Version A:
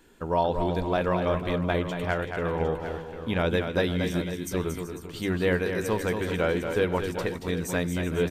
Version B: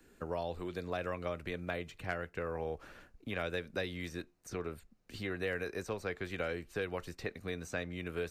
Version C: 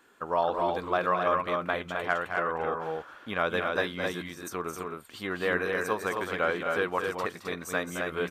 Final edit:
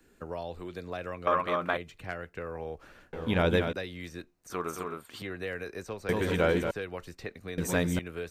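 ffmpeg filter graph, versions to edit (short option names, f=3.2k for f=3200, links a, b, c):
-filter_complex "[2:a]asplit=2[a][b];[0:a]asplit=3[c][d][e];[1:a]asplit=6[f][g][h][i][j][k];[f]atrim=end=1.272[l];[a]atrim=start=1.268:end=1.772[m];[g]atrim=start=1.768:end=3.132[n];[c]atrim=start=3.128:end=3.732[o];[h]atrim=start=3.728:end=4.502[p];[b]atrim=start=4.498:end=5.222[q];[i]atrim=start=5.218:end=6.092[r];[d]atrim=start=6.088:end=6.712[s];[j]atrim=start=6.708:end=7.582[t];[e]atrim=start=7.578:end=7.992[u];[k]atrim=start=7.988[v];[l][m]acrossfade=d=0.004:c1=hsin:c2=hsin[w];[w][n]acrossfade=d=0.004:c1=hsin:c2=hsin[x];[x][o]acrossfade=d=0.004:c1=hsin:c2=hsin[y];[y][p]acrossfade=d=0.004:c1=hsin:c2=hsin[z];[z][q]acrossfade=d=0.004:c1=hsin:c2=hsin[aa];[aa][r]acrossfade=d=0.004:c1=hsin:c2=hsin[ab];[ab][s]acrossfade=d=0.004:c1=hsin:c2=hsin[ac];[ac][t]acrossfade=d=0.004:c1=hsin:c2=hsin[ad];[ad][u]acrossfade=d=0.004:c1=hsin:c2=hsin[ae];[ae][v]acrossfade=d=0.004:c1=hsin:c2=hsin"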